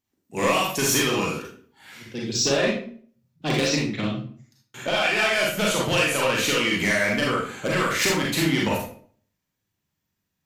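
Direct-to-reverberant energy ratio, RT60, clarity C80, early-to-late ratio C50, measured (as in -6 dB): -3.5 dB, 0.50 s, 8.0 dB, 2.0 dB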